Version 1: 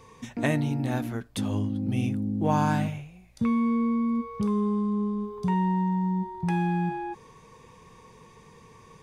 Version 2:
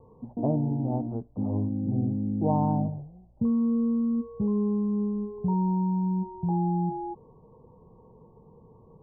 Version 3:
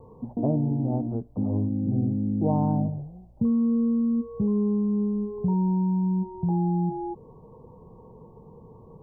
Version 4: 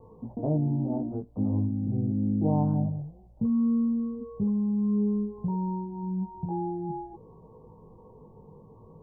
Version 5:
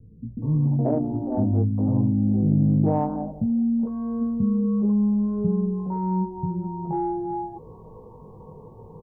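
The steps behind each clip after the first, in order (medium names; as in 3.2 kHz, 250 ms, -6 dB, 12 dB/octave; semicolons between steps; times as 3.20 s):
steep low-pass 900 Hz 48 dB/octave
dynamic bell 920 Hz, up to -5 dB, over -48 dBFS, Q 1.7; in parallel at -1 dB: compression, threshold -34 dBFS, peak gain reduction 12.5 dB
chorus 0.54 Hz, delay 18 ms, depth 2.5 ms
in parallel at -7 dB: saturation -22 dBFS, distortion -17 dB; on the sum: bands offset in time lows, highs 420 ms, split 250 Hz; trim +4.5 dB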